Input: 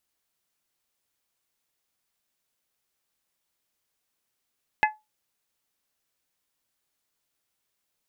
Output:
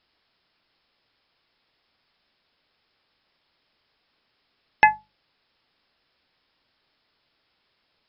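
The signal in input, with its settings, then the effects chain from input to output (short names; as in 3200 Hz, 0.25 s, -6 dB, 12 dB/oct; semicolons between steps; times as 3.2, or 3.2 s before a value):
glass hit bell, lowest mode 857 Hz, modes 4, decay 0.21 s, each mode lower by 2 dB, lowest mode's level -15.5 dB
brick-wall FIR low-pass 5400 Hz; notches 50/100/150/200 Hz; maximiser +13.5 dB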